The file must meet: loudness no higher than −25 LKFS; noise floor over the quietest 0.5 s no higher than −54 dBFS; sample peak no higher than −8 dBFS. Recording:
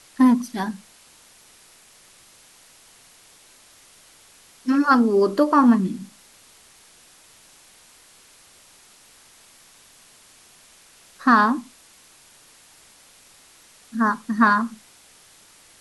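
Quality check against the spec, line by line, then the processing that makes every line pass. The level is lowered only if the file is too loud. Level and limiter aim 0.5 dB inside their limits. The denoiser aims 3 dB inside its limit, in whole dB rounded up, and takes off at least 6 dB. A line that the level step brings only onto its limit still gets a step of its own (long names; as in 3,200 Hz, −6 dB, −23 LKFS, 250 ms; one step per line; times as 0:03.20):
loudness −19.5 LKFS: out of spec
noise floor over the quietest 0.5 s −52 dBFS: out of spec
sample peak −5.0 dBFS: out of spec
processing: level −6 dB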